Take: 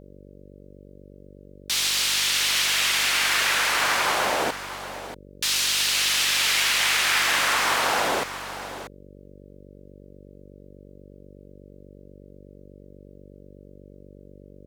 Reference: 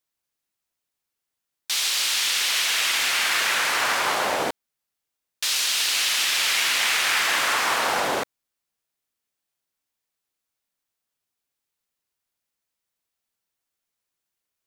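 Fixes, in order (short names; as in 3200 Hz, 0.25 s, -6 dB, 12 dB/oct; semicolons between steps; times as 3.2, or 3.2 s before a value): de-hum 48.2 Hz, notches 12; inverse comb 0.636 s -12 dB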